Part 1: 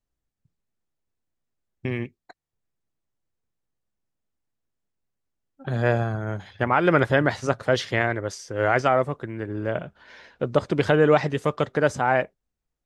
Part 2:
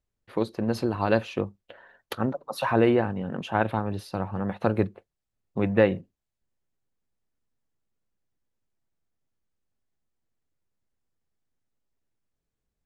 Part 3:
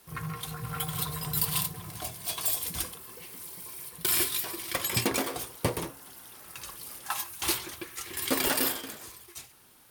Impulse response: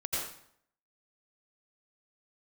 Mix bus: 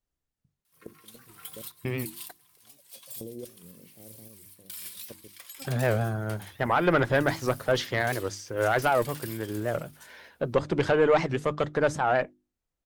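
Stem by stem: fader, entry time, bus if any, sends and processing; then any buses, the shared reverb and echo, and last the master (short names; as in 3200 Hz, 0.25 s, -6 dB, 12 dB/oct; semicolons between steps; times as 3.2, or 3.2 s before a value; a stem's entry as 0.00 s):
-1.0 dB, 0.00 s, no bus, no send, dry
-1.0 dB, 0.45 s, bus A, no send, steep low-pass 550 Hz 36 dB/oct; level quantiser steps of 23 dB; auto duck -21 dB, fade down 0.95 s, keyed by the first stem
-13.5 dB, 0.65 s, bus A, no send, tilt shelf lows -9.5 dB
bus A: 0.0 dB, random-step tremolo, depth 75%; compressor 6:1, threshold -36 dBFS, peak gain reduction 12 dB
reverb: off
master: notches 50/100/150/200/250/300/350 Hz; tube stage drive 12 dB, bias 0.3; record warp 78 rpm, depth 160 cents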